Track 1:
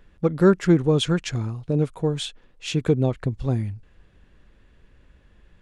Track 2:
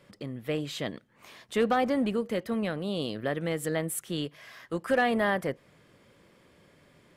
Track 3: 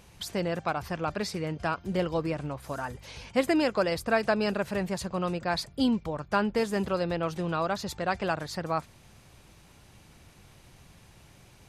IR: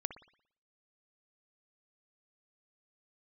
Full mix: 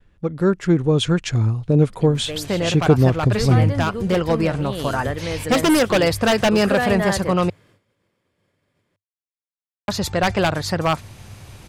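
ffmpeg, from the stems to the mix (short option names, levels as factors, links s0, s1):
-filter_complex "[0:a]bandreject=f=50:t=h:w=6,bandreject=f=100:t=h:w=6,volume=0.708[s0];[1:a]lowshelf=f=150:g=-3,adelay=1800,volume=0.376[s1];[2:a]aeval=exprs='0.0841*(abs(mod(val(0)/0.0841+3,4)-2)-1)':c=same,adelay=2150,volume=0.944,asplit=3[s2][s3][s4];[s2]atrim=end=7.5,asetpts=PTS-STARTPTS,afade=t=out:st=7.496:d=0.004:c=hsin[s5];[s3]atrim=start=7.5:end=9.88,asetpts=PTS-STARTPTS,volume=0[s6];[s4]atrim=start=9.88,asetpts=PTS-STARTPTS,afade=t=in:d=0.004:c=hsin[s7];[s5][s6][s7]concat=n=3:v=0:a=1[s8];[s0][s1][s8]amix=inputs=3:normalize=0,agate=range=0.0224:threshold=0.00126:ratio=3:detection=peak,equalizer=f=99:w=3.5:g=10.5,dynaudnorm=f=230:g=7:m=3.98"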